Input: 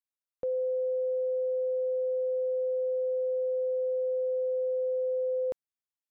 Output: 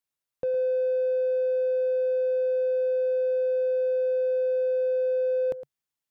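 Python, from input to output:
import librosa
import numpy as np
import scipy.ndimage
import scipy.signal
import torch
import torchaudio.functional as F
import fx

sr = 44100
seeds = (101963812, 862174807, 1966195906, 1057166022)

p1 = x + 10.0 ** (-14.0 / 20.0) * np.pad(x, (int(111 * sr / 1000.0), 0))[:len(x)]
p2 = 10.0 ** (-37.0 / 20.0) * np.tanh(p1 / 10.0 ** (-37.0 / 20.0))
p3 = p1 + F.gain(torch.from_numpy(p2), -8.0).numpy()
p4 = fx.peak_eq(p3, sr, hz=140.0, db=7.0, octaves=0.42)
y = F.gain(torch.from_numpy(p4), 2.5).numpy()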